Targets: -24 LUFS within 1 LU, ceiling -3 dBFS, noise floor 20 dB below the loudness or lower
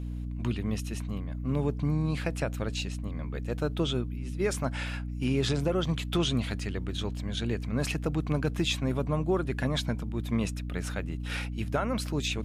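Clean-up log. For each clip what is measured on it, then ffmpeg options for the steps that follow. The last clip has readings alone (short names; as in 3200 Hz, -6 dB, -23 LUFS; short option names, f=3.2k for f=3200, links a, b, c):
hum 60 Hz; harmonics up to 300 Hz; hum level -32 dBFS; loudness -31.0 LUFS; peak -16.0 dBFS; loudness target -24.0 LUFS
-> -af "bandreject=f=60:t=h:w=6,bandreject=f=120:t=h:w=6,bandreject=f=180:t=h:w=6,bandreject=f=240:t=h:w=6,bandreject=f=300:t=h:w=6"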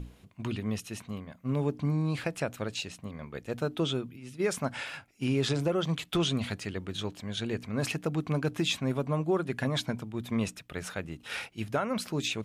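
hum none; loudness -32.5 LUFS; peak -16.5 dBFS; loudness target -24.0 LUFS
-> -af "volume=8.5dB"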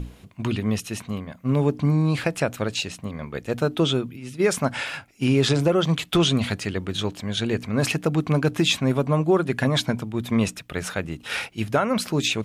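loudness -24.0 LUFS; peak -8.0 dBFS; noise floor -49 dBFS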